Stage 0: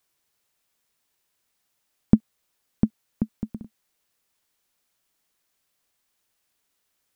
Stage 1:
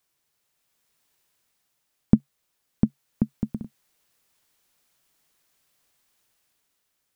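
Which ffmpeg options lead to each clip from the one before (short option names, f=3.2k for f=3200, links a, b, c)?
-af "dynaudnorm=f=150:g=11:m=6dB,equalizer=f=140:t=o:w=0.24:g=5,volume=-1dB"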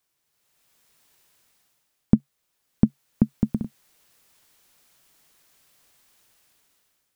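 -af "dynaudnorm=f=130:g=7:m=9dB,volume=-1dB"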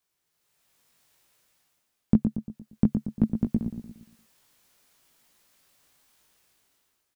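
-filter_complex "[0:a]flanger=delay=17.5:depth=2.2:speed=0.57,asplit=2[a][b];[b]adelay=116,lowpass=f=1.4k:p=1,volume=-6.5dB,asplit=2[c][d];[d]adelay=116,lowpass=f=1.4k:p=1,volume=0.46,asplit=2[e][f];[f]adelay=116,lowpass=f=1.4k:p=1,volume=0.46,asplit=2[g][h];[h]adelay=116,lowpass=f=1.4k:p=1,volume=0.46,asplit=2[i][j];[j]adelay=116,lowpass=f=1.4k:p=1,volume=0.46[k];[c][e][g][i][k]amix=inputs=5:normalize=0[l];[a][l]amix=inputs=2:normalize=0"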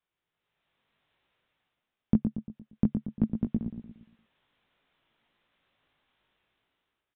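-af "aresample=8000,aresample=44100,volume=-3.5dB"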